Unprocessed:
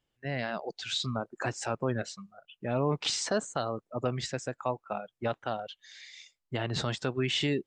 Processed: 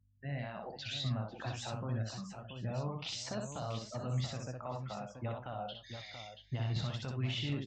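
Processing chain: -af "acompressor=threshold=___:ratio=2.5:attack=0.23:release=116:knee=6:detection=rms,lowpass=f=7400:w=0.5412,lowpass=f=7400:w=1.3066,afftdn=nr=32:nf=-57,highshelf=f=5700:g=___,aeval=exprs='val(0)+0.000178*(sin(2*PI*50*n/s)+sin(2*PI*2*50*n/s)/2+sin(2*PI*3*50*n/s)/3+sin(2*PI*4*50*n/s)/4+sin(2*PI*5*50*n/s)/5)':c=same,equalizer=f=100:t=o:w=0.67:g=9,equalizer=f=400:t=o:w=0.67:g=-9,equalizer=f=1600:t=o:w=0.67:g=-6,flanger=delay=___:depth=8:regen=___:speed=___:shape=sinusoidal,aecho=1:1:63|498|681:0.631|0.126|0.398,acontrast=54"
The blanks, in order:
-38dB, -7.5, 8.6, -63, 0.97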